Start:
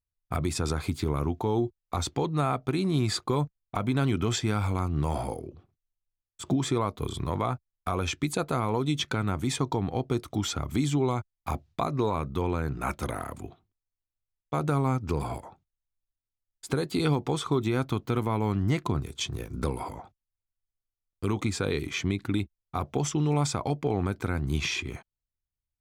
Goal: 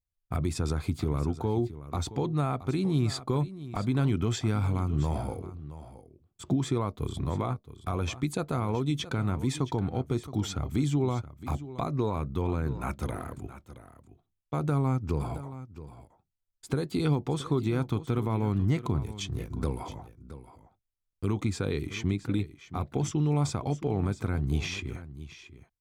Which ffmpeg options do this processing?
-filter_complex "[0:a]lowshelf=f=340:g=7,asplit=2[s0][s1];[s1]aecho=0:1:671:0.188[s2];[s0][s2]amix=inputs=2:normalize=0,volume=0.531"

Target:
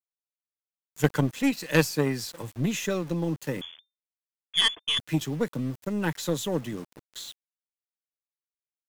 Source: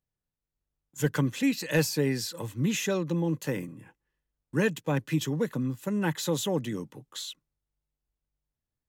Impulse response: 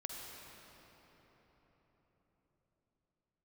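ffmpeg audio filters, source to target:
-filter_complex "[0:a]aeval=exprs='val(0)*gte(abs(val(0)),0.00944)':c=same,asettb=1/sr,asplit=3[s0][s1][s2];[s0]atrim=end=3.614[s3];[s1]atrim=start=3.61:end=4.99,asetpts=PTS-STARTPTS,afade=t=in:d=0.004:c=qsin,afade=t=out:st=1.376:d=0.004:c=qsin,lowpass=f=3100:t=q:w=0.5098,lowpass=f=3100:t=q:w=0.6013,lowpass=f=3100:t=q:w=0.9,lowpass=f=3100:t=q:w=2.563,afreqshift=-3600[s4];[s2]atrim=start=4.986[s5];[s3][s4]acrossfade=d=0.004:c1=hsin:c2=qsin[s6];[s6][s5]acrossfade=d=0.004:c1=qsin:c2=hsin,aeval=exprs='0.224*(cos(1*acos(clip(val(0)/0.224,-1,1)))-cos(1*PI/2))+0.0447*(cos(3*acos(clip(val(0)/0.224,-1,1)))-cos(3*PI/2))+0.00631*(cos(4*acos(clip(val(0)/0.224,-1,1)))-cos(4*PI/2))':c=same,volume=2"

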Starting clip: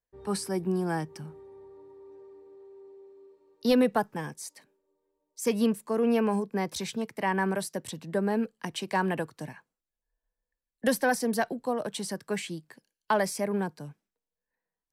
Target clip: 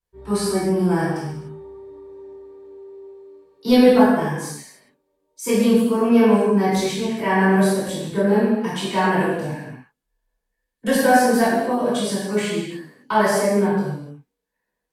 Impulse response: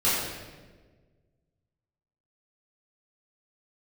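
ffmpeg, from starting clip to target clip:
-filter_complex "[1:a]atrim=start_sample=2205,afade=t=out:st=0.3:d=0.01,atrim=end_sample=13671,asetrate=35280,aresample=44100[s0];[0:a][s0]afir=irnorm=-1:irlink=0,volume=0.501"

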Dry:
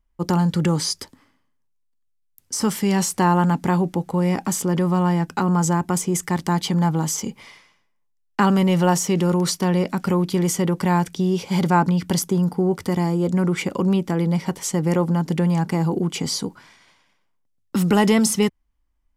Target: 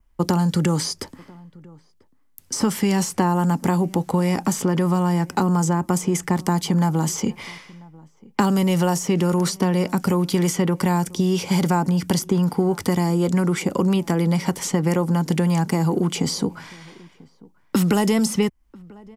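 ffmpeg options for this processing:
-filter_complex "[0:a]adynamicequalizer=threshold=0.00398:dfrequency=3800:dqfactor=2.8:tfrequency=3800:tqfactor=2.8:attack=5:release=100:ratio=0.375:range=2.5:mode=cutabove:tftype=bell,acrossover=split=92|940|4800[s0][s1][s2][s3];[s0]acompressor=threshold=0.002:ratio=4[s4];[s1]acompressor=threshold=0.0447:ratio=4[s5];[s2]acompressor=threshold=0.00891:ratio=4[s6];[s3]acompressor=threshold=0.01:ratio=4[s7];[s4][s5][s6][s7]amix=inputs=4:normalize=0,asplit=2[s8][s9];[s9]adelay=991.3,volume=0.0631,highshelf=f=4000:g=-22.3[s10];[s8][s10]amix=inputs=2:normalize=0,volume=2.66"

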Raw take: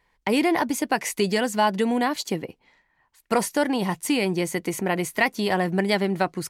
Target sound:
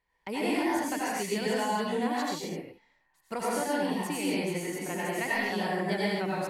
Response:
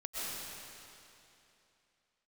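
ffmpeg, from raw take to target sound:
-filter_complex "[1:a]atrim=start_sample=2205,afade=t=out:st=0.43:d=0.01,atrim=end_sample=19404,asetrate=61740,aresample=44100[s0];[0:a][s0]afir=irnorm=-1:irlink=0,volume=0.531"

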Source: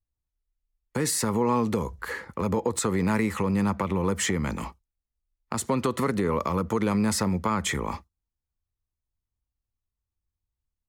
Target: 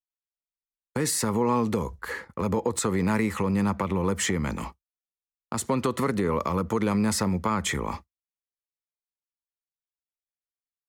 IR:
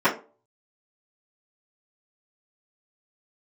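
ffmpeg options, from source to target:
-af "agate=range=0.0224:threshold=0.0178:ratio=3:detection=peak"

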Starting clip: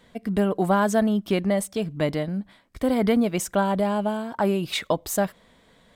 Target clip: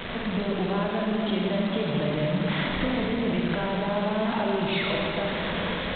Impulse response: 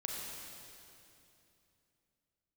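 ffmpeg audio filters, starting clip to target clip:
-filter_complex "[0:a]aeval=exprs='val(0)+0.5*0.0631*sgn(val(0))':c=same,acrossover=split=110[s0][s1];[s1]dynaudnorm=f=390:g=7:m=3.76[s2];[s0][s2]amix=inputs=2:normalize=0,alimiter=limit=0.282:level=0:latency=1:release=12,acompressor=threshold=0.0891:ratio=12,bandreject=f=67.47:t=h:w=4,bandreject=f=134.94:t=h:w=4,bandreject=f=202.41:t=h:w=4[s3];[1:a]atrim=start_sample=2205[s4];[s3][s4]afir=irnorm=-1:irlink=0,aresample=8000,acrusher=bits=6:dc=4:mix=0:aa=0.000001,aresample=44100,volume=0.75"

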